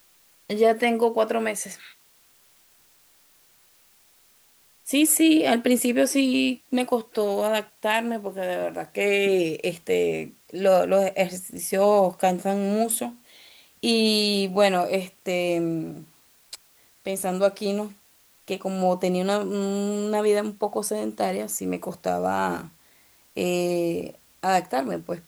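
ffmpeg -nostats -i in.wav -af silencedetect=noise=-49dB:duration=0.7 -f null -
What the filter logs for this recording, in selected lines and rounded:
silence_start: 1.94
silence_end: 4.85 | silence_duration: 2.92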